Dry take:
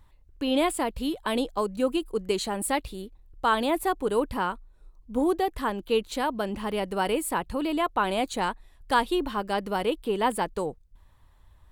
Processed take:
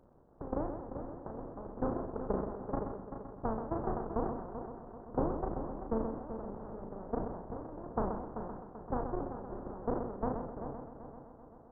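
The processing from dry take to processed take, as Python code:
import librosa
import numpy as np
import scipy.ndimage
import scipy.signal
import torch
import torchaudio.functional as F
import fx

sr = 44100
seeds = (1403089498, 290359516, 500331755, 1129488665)

y = fx.spec_flatten(x, sr, power=0.15)
y = fx.level_steps(y, sr, step_db=12)
y = fx.transient(y, sr, attack_db=8, sustain_db=1)
y = fx.dmg_crackle(y, sr, seeds[0], per_s=390.0, level_db=-36.0)
y = scipy.ndimage.gaussian_filter1d(y, 11.0, mode='constant')
y = fx.doubler(y, sr, ms=36.0, db=-8)
y = fx.echo_heads(y, sr, ms=129, heads='first and third', feedback_pct=64, wet_db=-10.0)
y = fx.sustainer(y, sr, db_per_s=51.0)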